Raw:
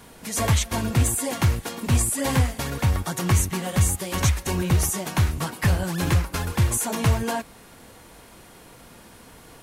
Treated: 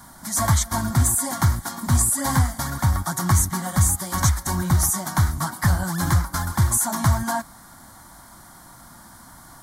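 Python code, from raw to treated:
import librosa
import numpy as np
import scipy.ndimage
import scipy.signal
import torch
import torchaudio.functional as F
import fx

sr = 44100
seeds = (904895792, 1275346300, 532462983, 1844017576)

y = fx.low_shelf(x, sr, hz=160.0, db=-5.0)
y = fx.fixed_phaser(y, sr, hz=1100.0, stages=4)
y = F.gain(torch.from_numpy(y), 5.5).numpy()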